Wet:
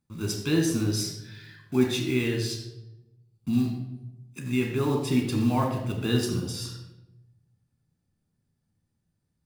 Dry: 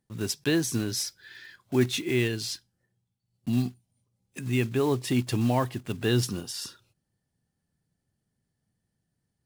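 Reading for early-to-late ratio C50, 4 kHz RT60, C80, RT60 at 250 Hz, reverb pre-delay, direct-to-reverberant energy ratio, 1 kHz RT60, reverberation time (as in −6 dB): 4.5 dB, 0.60 s, 6.5 dB, 1.3 s, 13 ms, 1.0 dB, 0.80 s, 0.95 s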